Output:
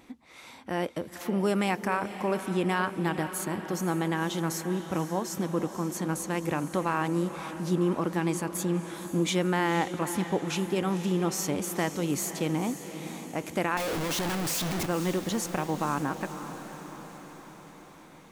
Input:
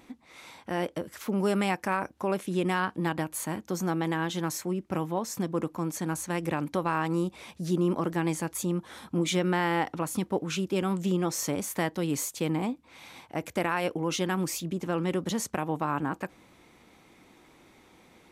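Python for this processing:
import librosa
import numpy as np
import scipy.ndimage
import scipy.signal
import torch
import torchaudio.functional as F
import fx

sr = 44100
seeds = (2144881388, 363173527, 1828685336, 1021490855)

y = fx.clip_1bit(x, sr, at=(13.77, 14.86))
y = fx.echo_diffused(y, sr, ms=506, feedback_pct=61, wet_db=-11)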